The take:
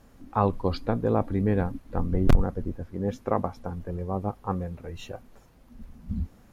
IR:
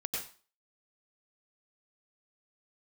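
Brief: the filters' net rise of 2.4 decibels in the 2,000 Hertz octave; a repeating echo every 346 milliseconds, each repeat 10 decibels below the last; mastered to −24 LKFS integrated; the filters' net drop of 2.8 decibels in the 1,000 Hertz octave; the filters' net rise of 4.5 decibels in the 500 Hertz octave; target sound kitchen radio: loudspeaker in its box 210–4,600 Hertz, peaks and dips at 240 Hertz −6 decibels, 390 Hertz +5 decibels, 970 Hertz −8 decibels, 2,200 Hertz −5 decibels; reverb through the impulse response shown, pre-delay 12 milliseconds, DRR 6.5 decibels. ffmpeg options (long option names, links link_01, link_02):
-filter_complex "[0:a]equalizer=frequency=500:width_type=o:gain=4,equalizer=frequency=1000:width_type=o:gain=-3,equalizer=frequency=2000:width_type=o:gain=6.5,aecho=1:1:346|692|1038|1384:0.316|0.101|0.0324|0.0104,asplit=2[link_01][link_02];[1:a]atrim=start_sample=2205,adelay=12[link_03];[link_02][link_03]afir=irnorm=-1:irlink=0,volume=-9.5dB[link_04];[link_01][link_04]amix=inputs=2:normalize=0,highpass=210,equalizer=frequency=240:width_type=q:width=4:gain=-6,equalizer=frequency=390:width_type=q:width=4:gain=5,equalizer=frequency=970:width_type=q:width=4:gain=-8,equalizer=frequency=2200:width_type=q:width=4:gain=-5,lowpass=frequency=4600:width=0.5412,lowpass=frequency=4600:width=1.3066,volume=3.5dB"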